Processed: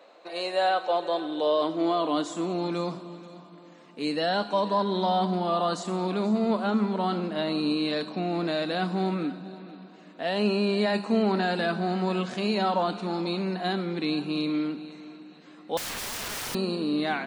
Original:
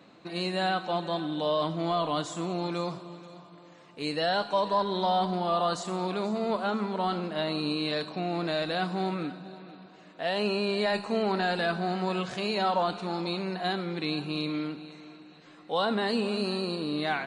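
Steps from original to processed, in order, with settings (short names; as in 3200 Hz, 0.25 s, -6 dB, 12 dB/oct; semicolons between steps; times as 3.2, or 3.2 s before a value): high-pass sweep 550 Hz -> 220 Hz, 0.63–2.76; 15.77–16.55 wrapped overs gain 29.5 dB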